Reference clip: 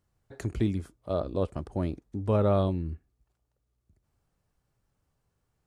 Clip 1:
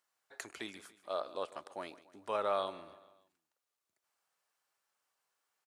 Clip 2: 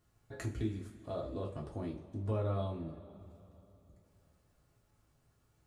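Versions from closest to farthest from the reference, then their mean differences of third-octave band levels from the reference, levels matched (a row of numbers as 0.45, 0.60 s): 2, 1; 5.0, 11.0 dB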